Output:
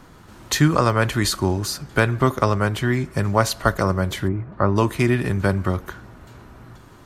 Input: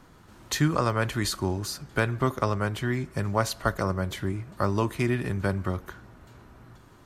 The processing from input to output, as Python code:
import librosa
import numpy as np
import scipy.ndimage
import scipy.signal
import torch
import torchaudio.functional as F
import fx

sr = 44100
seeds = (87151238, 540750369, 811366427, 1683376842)

y = fx.lowpass(x, sr, hz=fx.line((4.27, 1200.0), (4.75, 2100.0)), slope=12, at=(4.27, 4.75), fade=0.02)
y = F.gain(torch.from_numpy(y), 7.0).numpy()